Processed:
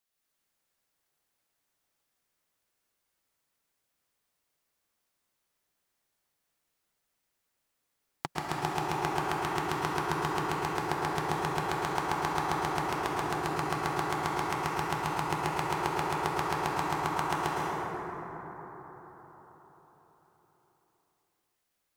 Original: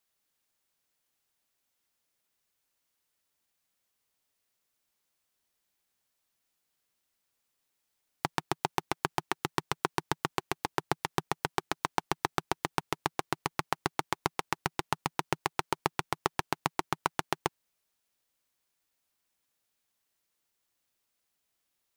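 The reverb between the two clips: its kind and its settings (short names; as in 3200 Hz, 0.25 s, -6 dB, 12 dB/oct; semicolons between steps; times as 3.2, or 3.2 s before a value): plate-style reverb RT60 4.8 s, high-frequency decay 0.3×, pre-delay 0.1 s, DRR -6 dB; gain -4.5 dB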